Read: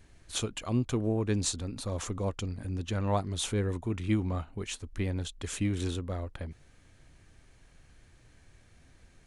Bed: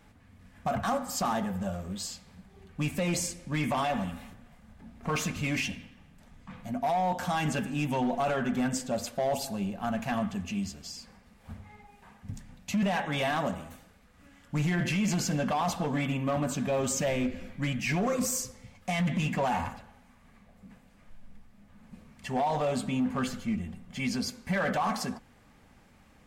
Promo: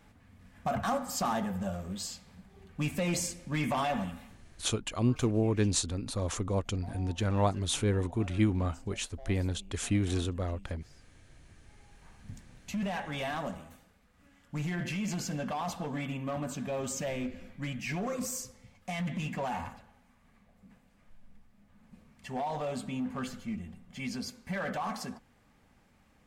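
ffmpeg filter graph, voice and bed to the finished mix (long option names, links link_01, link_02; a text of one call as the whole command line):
ffmpeg -i stem1.wav -i stem2.wav -filter_complex "[0:a]adelay=4300,volume=1.5dB[link_01];[1:a]volume=15dB,afade=type=out:start_time=3.97:duration=0.79:silence=0.0891251,afade=type=in:start_time=11.59:duration=0.61:silence=0.149624[link_02];[link_01][link_02]amix=inputs=2:normalize=0" out.wav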